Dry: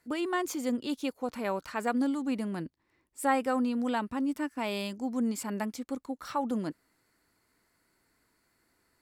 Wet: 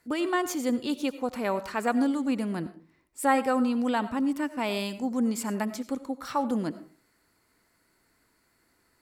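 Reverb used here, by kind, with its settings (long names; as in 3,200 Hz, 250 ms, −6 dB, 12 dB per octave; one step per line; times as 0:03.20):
comb and all-pass reverb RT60 0.41 s, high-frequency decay 0.45×, pre-delay 50 ms, DRR 13.5 dB
level +3.5 dB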